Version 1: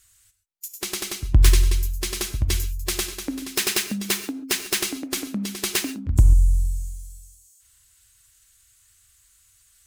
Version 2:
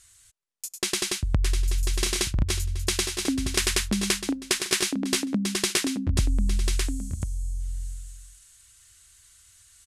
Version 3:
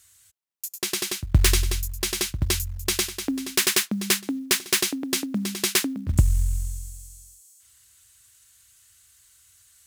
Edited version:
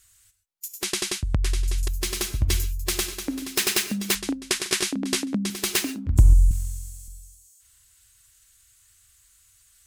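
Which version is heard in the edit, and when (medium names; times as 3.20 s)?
1
0.84–1.88 s: from 2
4.15–5.50 s: from 2
6.51–7.08 s: from 3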